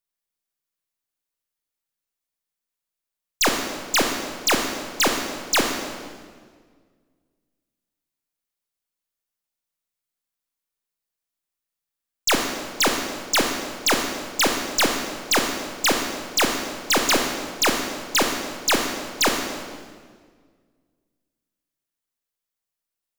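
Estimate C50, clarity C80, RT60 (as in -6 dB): 4.0 dB, 5.5 dB, 1.7 s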